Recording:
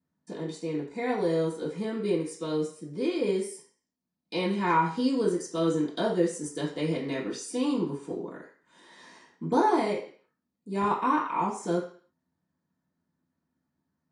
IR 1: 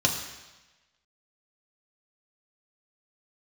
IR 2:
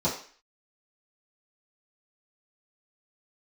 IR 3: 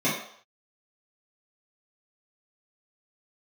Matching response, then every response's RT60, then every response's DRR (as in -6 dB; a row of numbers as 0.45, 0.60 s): 2; 1.1 s, 0.45 s, not exponential; 0.5, -10.0, -11.0 dB